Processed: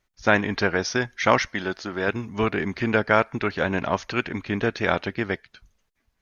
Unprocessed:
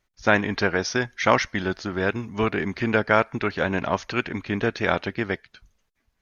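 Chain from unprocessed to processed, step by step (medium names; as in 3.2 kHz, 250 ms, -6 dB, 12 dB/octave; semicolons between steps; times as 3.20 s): 1.53–2.08 s: bass shelf 150 Hz -11.5 dB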